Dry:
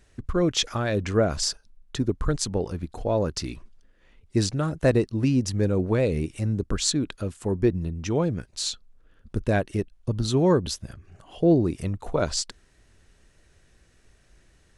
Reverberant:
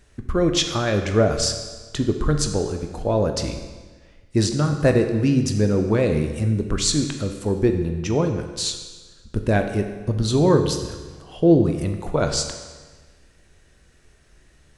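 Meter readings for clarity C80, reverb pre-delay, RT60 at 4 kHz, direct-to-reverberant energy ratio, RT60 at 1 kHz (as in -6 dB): 9.0 dB, 14 ms, 1.3 s, 5.0 dB, 1.4 s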